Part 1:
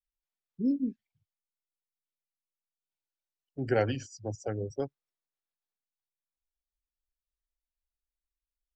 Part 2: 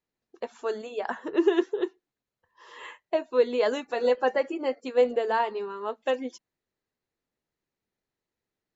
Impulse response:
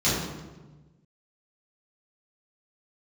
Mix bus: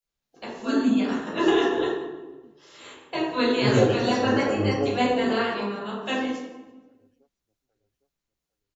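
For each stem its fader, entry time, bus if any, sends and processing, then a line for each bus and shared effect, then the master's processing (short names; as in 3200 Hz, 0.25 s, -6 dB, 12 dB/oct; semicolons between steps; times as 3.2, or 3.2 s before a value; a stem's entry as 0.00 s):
+3.0 dB, 0.00 s, send -12.5 dB, echo send -15.5 dB, photocell phaser 2.1 Hz
-10.0 dB, 0.00 s, send -6 dB, no echo send, spectral limiter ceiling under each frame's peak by 20 dB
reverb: on, RT60 1.2 s, pre-delay 3 ms
echo: feedback echo 0.807 s, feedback 32%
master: dry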